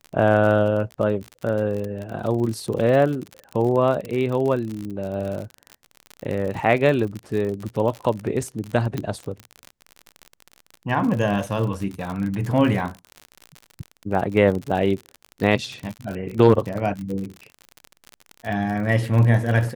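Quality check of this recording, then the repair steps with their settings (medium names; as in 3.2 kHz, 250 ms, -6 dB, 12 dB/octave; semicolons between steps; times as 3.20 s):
crackle 48 per s -27 dBFS
8.98 s: pop -13 dBFS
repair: de-click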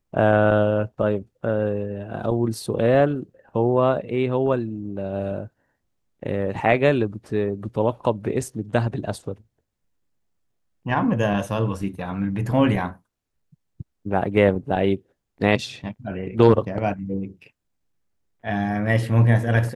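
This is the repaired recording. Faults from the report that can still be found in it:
nothing left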